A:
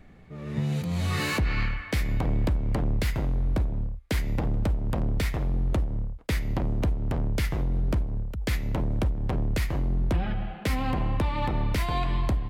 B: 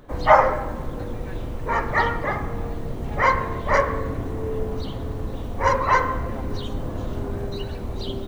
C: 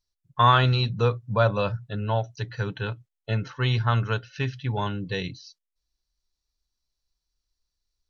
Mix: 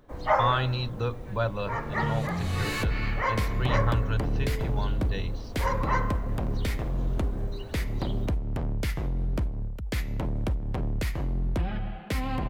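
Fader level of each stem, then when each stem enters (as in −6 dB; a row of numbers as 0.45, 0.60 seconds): −2.5, −9.5, −7.0 decibels; 1.45, 0.00, 0.00 seconds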